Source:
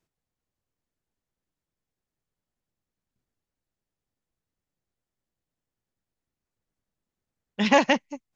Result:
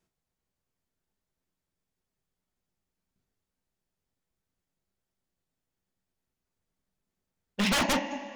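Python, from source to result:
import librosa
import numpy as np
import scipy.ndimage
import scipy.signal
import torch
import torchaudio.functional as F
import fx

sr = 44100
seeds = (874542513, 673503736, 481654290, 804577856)

y = fx.vibrato(x, sr, rate_hz=3.0, depth_cents=14.0)
y = fx.rev_double_slope(y, sr, seeds[0], early_s=0.25, late_s=2.2, knee_db=-18, drr_db=5.5)
y = 10.0 ** (-20.0 / 20.0) * (np.abs((y / 10.0 ** (-20.0 / 20.0) + 3.0) % 4.0 - 2.0) - 1.0)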